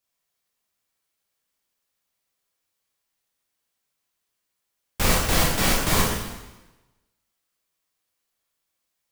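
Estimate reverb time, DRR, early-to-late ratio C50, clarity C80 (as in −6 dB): 1.1 s, −3.5 dB, 1.5 dB, 4.0 dB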